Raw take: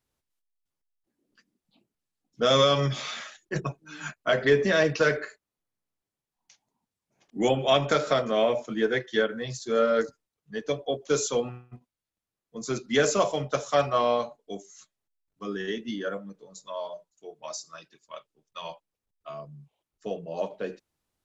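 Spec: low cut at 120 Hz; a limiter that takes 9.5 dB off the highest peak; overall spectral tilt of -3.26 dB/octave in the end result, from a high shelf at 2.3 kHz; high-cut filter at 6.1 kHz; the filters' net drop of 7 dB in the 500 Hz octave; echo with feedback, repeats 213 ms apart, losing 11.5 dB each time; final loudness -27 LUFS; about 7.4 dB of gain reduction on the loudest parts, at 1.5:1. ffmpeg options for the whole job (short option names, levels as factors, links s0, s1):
-af "highpass=120,lowpass=6100,equalizer=f=500:t=o:g=-9,highshelf=f=2300:g=6,acompressor=threshold=0.0112:ratio=1.5,alimiter=level_in=1.26:limit=0.0631:level=0:latency=1,volume=0.794,aecho=1:1:213|426|639:0.266|0.0718|0.0194,volume=3.55"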